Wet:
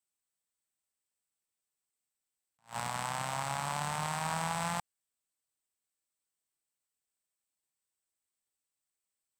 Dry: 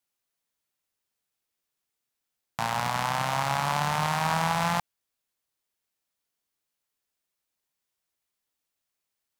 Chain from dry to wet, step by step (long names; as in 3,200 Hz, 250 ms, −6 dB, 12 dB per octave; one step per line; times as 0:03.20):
parametric band 8,100 Hz +14.5 dB 0.21 octaves
level that may rise only so fast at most 280 dB per second
level −8.5 dB